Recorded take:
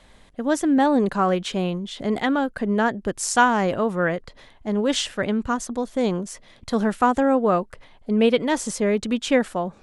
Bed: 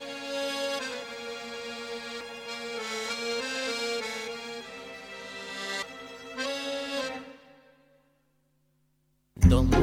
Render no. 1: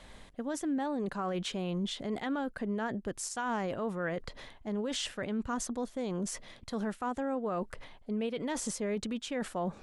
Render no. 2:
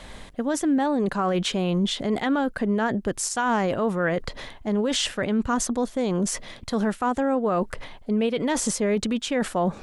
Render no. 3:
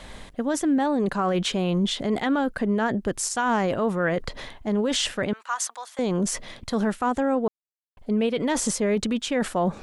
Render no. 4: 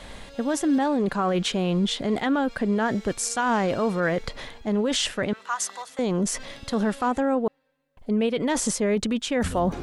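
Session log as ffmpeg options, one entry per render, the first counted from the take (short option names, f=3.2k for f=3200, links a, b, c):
-af "areverse,acompressor=threshold=-29dB:ratio=8,areverse,alimiter=level_in=2dB:limit=-24dB:level=0:latency=1:release=40,volume=-2dB"
-af "volume=10.5dB"
-filter_complex "[0:a]asettb=1/sr,asplit=3[a][b][c];[a]atrim=end=5.334[d];[b]atrim=start=5.33:end=5.99,asetpts=PTS-STARTPTS,afade=t=in:d=0.004:c=qsin,afade=t=out:st=0.656:d=0.004:c=qsin,highpass=f=870:w=0.5412,highpass=f=870:w=1.3066[e];[c]atrim=start=5.986[f];[d][e]acrossfade=d=0.004:c1=hsin:c2=qsin[g];[g][f]acrossfade=d=0.004:c1=qsin:c2=hsin,asplit=3[h][i][j];[h]atrim=end=7.48,asetpts=PTS-STARTPTS,afade=t=out:st=7.476:d=0.004:c=hsin[k];[i]atrim=start=7.48:end=7.97,asetpts=PTS-STARTPTS,volume=0[l];[j]atrim=start=7.97,asetpts=PTS-STARTPTS,afade=t=in:d=0.004:c=hsin[m];[k][l][m]concat=n=3:v=0:a=1"
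-filter_complex "[1:a]volume=-13.5dB[a];[0:a][a]amix=inputs=2:normalize=0"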